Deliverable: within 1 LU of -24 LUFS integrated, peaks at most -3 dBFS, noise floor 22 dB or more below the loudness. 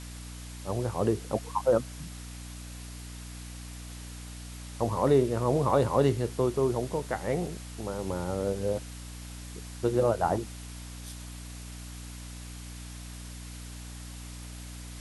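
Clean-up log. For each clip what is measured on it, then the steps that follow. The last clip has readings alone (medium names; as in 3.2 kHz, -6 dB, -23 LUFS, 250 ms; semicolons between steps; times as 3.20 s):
hum 60 Hz; highest harmonic 300 Hz; hum level -40 dBFS; noise floor -42 dBFS; noise floor target -51 dBFS; loudness -29.0 LUFS; peak level -10.5 dBFS; loudness target -24.0 LUFS
-> de-hum 60 Hz, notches 5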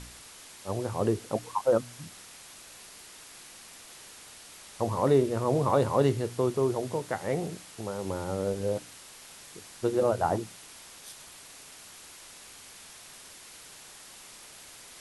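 hum not found; noise floor -49 dBFS; noise floor target -51 dBFS
-> noise reduction 6 dB, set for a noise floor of -49 dBFS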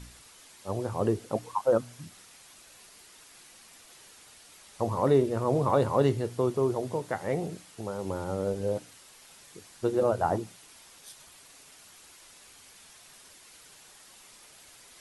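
noise floor -54 dBFS; loudness -29.0 LUFS; peak level -10.5 dBFS; loudness target -24.0 LUFS
-> trim +5 dB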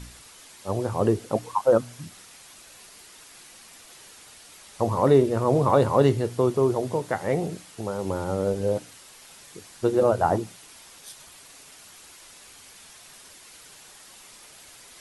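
loudness -24.0 LUFS; peak level -5.5 dBFS; noise floor -49 dBFS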